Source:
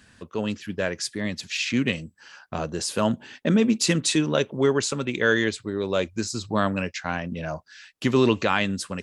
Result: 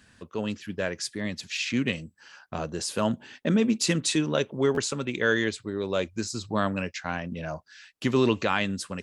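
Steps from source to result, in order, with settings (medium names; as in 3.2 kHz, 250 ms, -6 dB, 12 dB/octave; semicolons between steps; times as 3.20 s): buffer glitch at 4.74 s, samples 512, times 2; trim -3 dB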